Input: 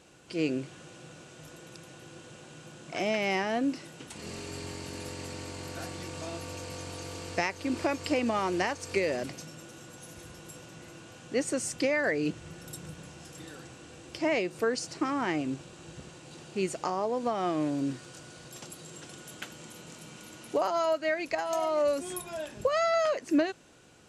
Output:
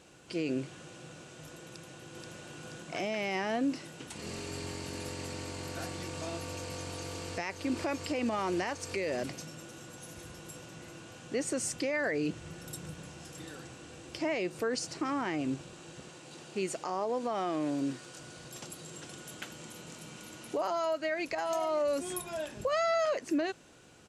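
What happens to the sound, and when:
0:01.66–0:02.34: delay throw 480 ms, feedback 60%, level −1.5 dB
0:15.79–0:18.20: high-pass filter 200 Hz 6 dB per octave
whole clip: brickwall limiter −23.5 dBFS

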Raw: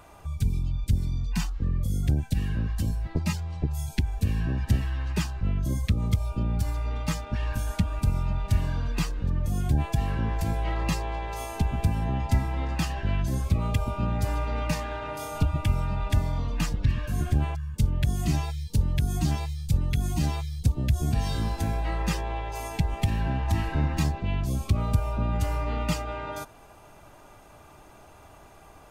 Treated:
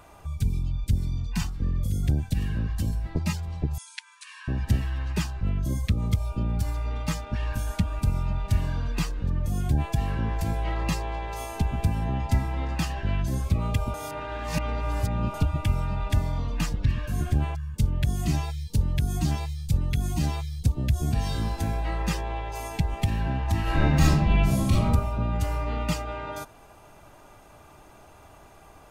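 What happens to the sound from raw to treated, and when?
0:00.65–0:01.33: delay throw 510 ms, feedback 75%, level −10.5 dB
0:03.78–0:04.48: linear-phase brick-wall band-pass 890–11,000 Hz
0:13.94–0:15.34: reverse
0:23.62–0:24.84: thrown reverb, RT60 0.82 s, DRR −6.5 dB

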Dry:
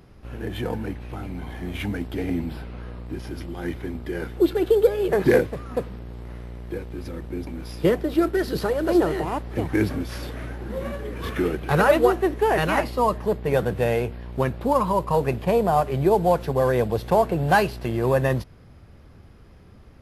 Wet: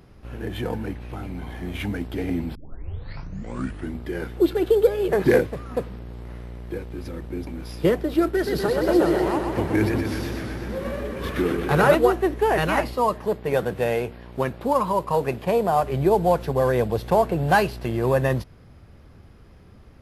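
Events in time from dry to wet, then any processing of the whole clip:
0:02.55: tape start 1.45 s
0:08.31–0:11.95: feedback echo with a swinging delay time 124 ms, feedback 70%, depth 109 cents, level −5 dB
0:12.94–0:15.83: low-shelf EQ 120 Hz −10 dB

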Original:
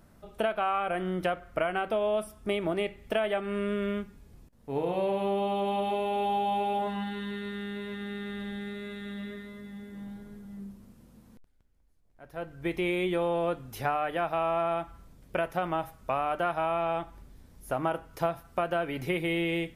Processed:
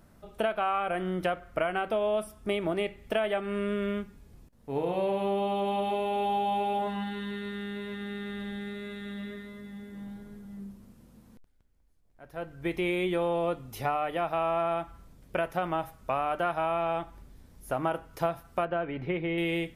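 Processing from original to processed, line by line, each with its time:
0:13.33–0:14.27: notch filter 1,600 Hz, Q 6.2
0:18.65–0:19.38: high-frequency loss of the air 360 metres

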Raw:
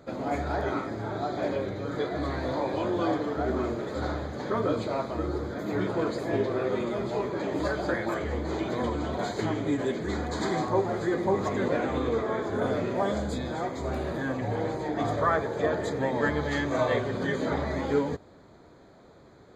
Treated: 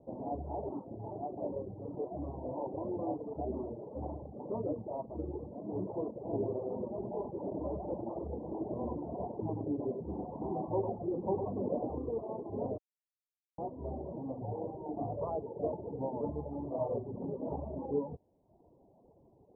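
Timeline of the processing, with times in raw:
0:06.14–0:11.95: single-tap delay 101 ms −4 dB
0:12.78–0:13.58: silence
whole clip: Butterworth low-pass 950 Hz 72 dB per octave; reverb reduction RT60 0.87 s; level −7 dB

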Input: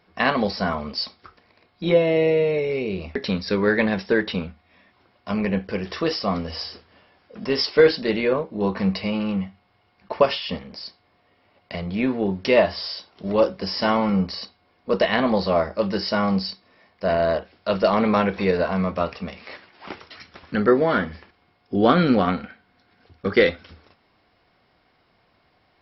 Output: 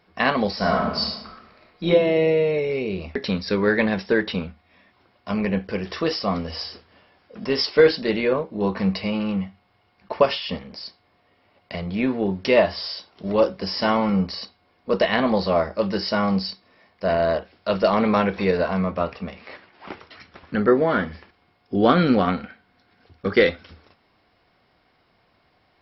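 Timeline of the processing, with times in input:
0:00.55–0:01.89: thrown reverb, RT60 1 s, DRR −1.5 dB
0:18.79–0:20.99: low-pass filter 3,000 Hz 6 dB per octave

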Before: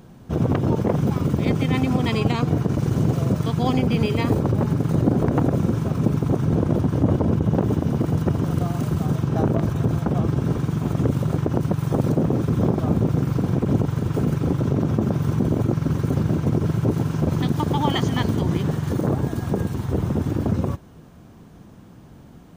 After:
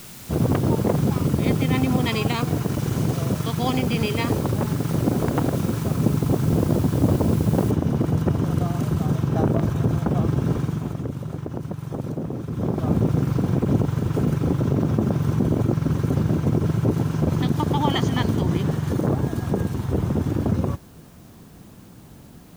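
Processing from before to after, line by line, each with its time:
0:02.05–0:05.84: tilt shelving filter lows −3 dB
0:07.71: noise floor change −42 dB −57 dB
0:10.57–0:12.95: duck −8.5 dB, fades 0.45 s

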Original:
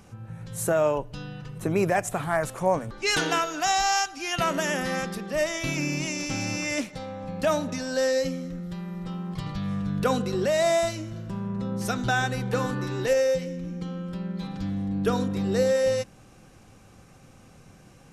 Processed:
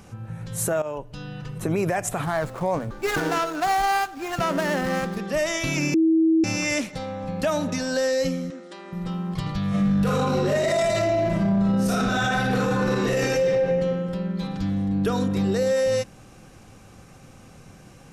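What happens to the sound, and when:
0:00.82–0:01.47: fade in, from −15.5 dB
0:02.25–0:05.17: running median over 15 samples
0:05.94–0:06.44: beep over 323 Hz −16 dBFS
0:08.50–0:08.93: linear-phase brick-wall band-pass 210–10,000 Hz
0:09.69–0:13.41: thrown reverb, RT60 1.6 s, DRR −10 dB
whole clip: brickwall limiter −19.5 dBFS; level +4.5 dB

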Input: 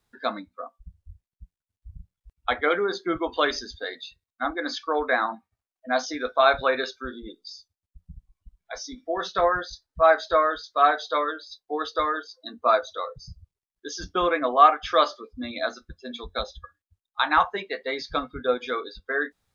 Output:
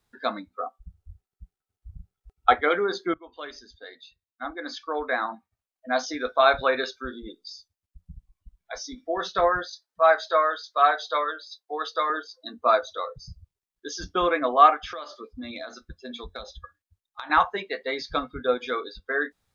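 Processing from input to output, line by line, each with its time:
0:00.50–0:02.55: hollow resonant body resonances 410/760/1,300 Hz, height 14 dB
0:03.14–0:06.22: fade in, from −21.5 dB
0:09.67–0:12.10: high-pass filter 480 Hz
0:14.83–0:17.30: downward compressor 10 to 1, threshold −32 dBFS

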